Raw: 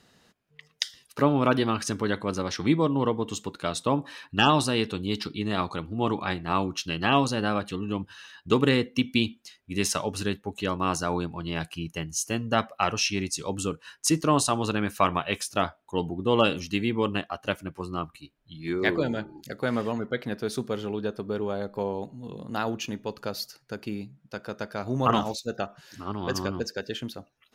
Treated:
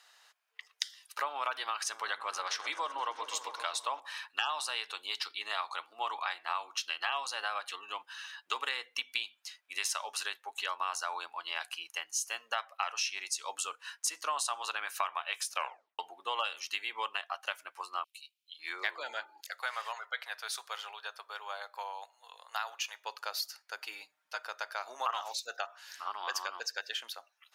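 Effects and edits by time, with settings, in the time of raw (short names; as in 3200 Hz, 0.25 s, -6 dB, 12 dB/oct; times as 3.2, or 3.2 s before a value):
1.67–4 repeats that get brighter 0.129 s, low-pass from 200 Hz, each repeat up 1 oct, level -6 dB
15.54 tape stop 0.45 s
18.04–18.59 steep high-pass 2500 Hz 48 dB/oct
19.41–23.04 Bessel high-pass 730 Hz, order 4
23.8–24.43 comb 6.5 ms, depth 76%
whole clip: HPF 810 Hz 24 dB/oct; compressor 4:1, threshold -33 dBFS; gain +1.5 dB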